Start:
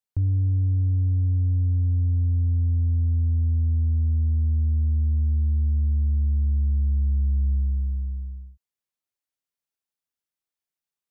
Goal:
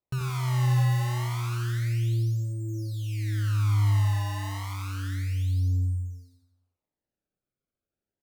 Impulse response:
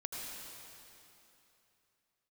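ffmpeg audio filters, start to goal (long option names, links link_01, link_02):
-filter_complex "[0:a]lowshelf=frequency=75:gain=-6.5,acrusher=samples=36:mix=1:aa=0.000001:lfo=1:lforange=57.6:lforate=0.22,aecho=1:1:118|236|354|472|590:0.596|0.262|0.115|0.0507|0.0223[link_01];[1:a]atrim=start_sample=2205,atrim=end_sample=4410[link_02];[link_01][link_02]afir=irnorm=-1:irlink=0,asetrate=59535,aresample=44100"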